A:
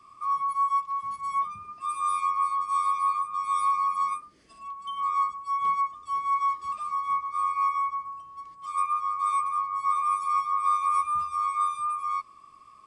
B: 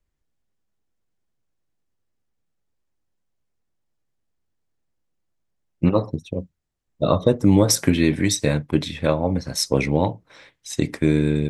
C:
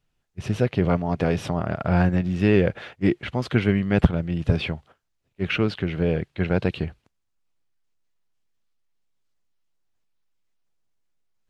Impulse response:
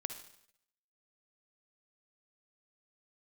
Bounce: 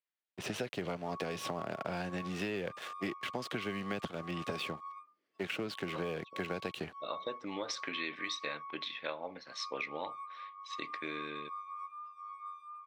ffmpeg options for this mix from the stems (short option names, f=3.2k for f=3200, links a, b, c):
-filter_complex "[0:a]lowpass=3.6k,adelay=850,volume=-19.5dB[a];[1:a]lowpass=f=3.9k:w=0.5412,lowpass=f=3.9k:w=1.3066,tiltshelf=f=870:g=-9,volume=-13.5dB[b];[2:a]acrossover=split=150|730|2800[c][d][e][f];[c]acompressor=threshold=-25dB:ratio=4[g];[d]acompressor=threshold=-33dB:ratio=4[h];[e]acompressor=threshold=-44dB:ratio=4[i];[f]acompressor=threshold=-41dB:ratio=4[j];[g][h][i][j]amix=inputs=4:normalize=0,aeval=exprs='sgn(val(0))*max(abs(val(0))-0.00447,0)':c=same,volume=2.5dB,asplit=2[k][l];[l]apad=whole_len=506925[m];[b][m]sidechaincompress=threshold=-31dB:ratio=8:attack=32:release=740[n];[a][n][k]amix=inputs=3:normalize=0,highpass=340,acompressor=threshold=-33dB:ratio=6"